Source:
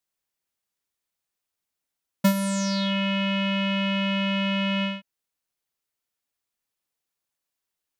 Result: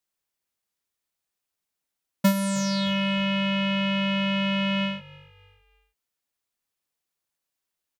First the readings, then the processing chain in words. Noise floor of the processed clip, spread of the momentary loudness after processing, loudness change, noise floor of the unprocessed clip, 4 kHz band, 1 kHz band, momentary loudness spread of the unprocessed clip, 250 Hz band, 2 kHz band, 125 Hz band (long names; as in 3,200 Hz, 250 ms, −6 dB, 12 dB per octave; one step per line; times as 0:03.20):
−85 dBFS, 2 LU, 0.0 dB, −85 dBFS, 0.0 dB, 0.0 dB, 2 LU, 0.0 dB, 0.0 dB, 0.0 dB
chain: echo with shifted repeats 308 ms, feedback 39%, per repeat −49 Hz, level −22 dB